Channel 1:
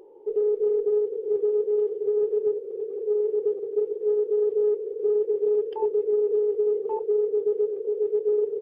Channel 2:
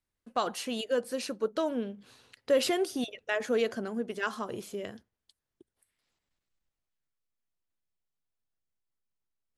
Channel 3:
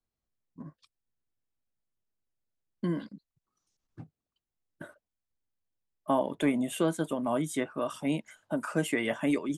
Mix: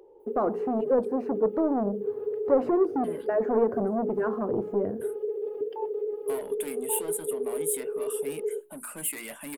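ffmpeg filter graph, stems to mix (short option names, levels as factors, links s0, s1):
-filter_complex "[0:a]highpass=270,volume=0.708[s0];[1:a]lowshelf=f=370:t=q:w=1.5:g=10.5,asoftclip=type=tanh:threshold=0.0473,firequalizer=gain_entry='entry(230,0);entry(470,14);entry(3300,-30)':delay=0.05:min_phase=1,volume=1,asplit=2[s1][s2];[2:a]equalizer=f=100:t=o:w=0.67:g=-11,equalizer=f=2500:t=o:w=0.67:g=8,equalizer=f=10000:t=o:w=0.67:g=4,asoftclip=type=tanh:threshold=0.0398,aexciter=amount=9.1:drive=8.2:freq=8600,adelay=200,volume=0.422[s3];[s2]apad=whole_len=379778[s4];[s0][s4]sidechaincompress=threshold=0.0447:ratio=8:attack=16:release=115[s5];[s5][s1][s3]amix=inputs=3:normalize=0,bandreject=f=60:t=h:w=6,bandreject=f=120:t=h:w=6,bandreject=f=180:t=h:w=6,bandreject=f=240:t=h:w=6,bandreject=f=300:t=h:w=6,bandreject=f=360:t=h:w=6,bandreject=f=420:t=h:w=6"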